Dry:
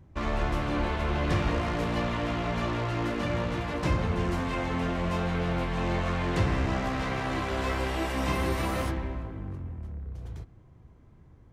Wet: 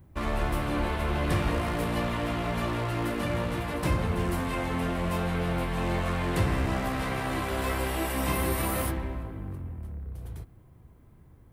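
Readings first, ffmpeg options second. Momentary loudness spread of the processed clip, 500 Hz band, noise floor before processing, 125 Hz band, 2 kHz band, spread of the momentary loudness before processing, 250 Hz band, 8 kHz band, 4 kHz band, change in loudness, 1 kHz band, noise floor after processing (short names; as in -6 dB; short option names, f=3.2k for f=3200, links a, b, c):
11 LU, 0.0 dB, -54 dBFS, 0.0 dB, 0.0 dB, 11 LU, 0.0 dB, +6.5 dB, 0.0 dB, 0.0 dB, 0.0 dB, -54 dBFS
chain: -af "aexciter=amount=6.5:drive=3:freq=8.7k"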